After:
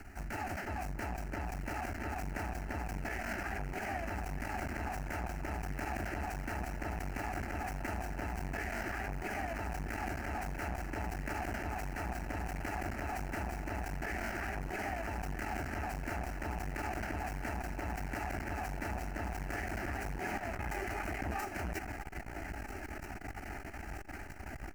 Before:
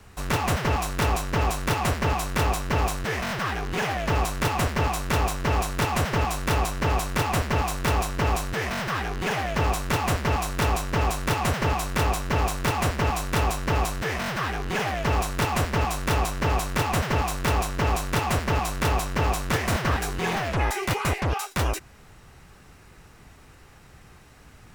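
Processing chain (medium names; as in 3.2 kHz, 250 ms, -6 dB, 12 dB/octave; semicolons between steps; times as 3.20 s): median filter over 5 samples; reverse; compression 5:1, threshold -39 dBFS, peak gain reduction 17.5 dB; reverse; peak limiter -35 dBFS, peak gain reduction 6.5 dB; harmony voices +7 st -8 dB; static phaser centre 720 Hz, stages 8; echo whose repeats swap between lows and highs 642 ms, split 1.2 kHz, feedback 87%, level -7.5 dB; transformer saturation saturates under 260 Hz; trim +8.5 dB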